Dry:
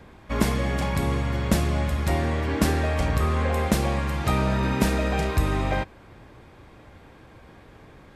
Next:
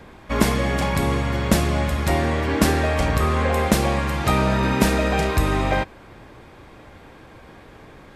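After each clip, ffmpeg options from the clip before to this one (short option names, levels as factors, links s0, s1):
-af "equalizer=f=80:t=o:w=2.5:g=-4,volume=1.88"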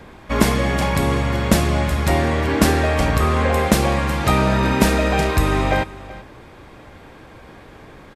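-af "aecho=1:1:380:0.119,volume=1.33"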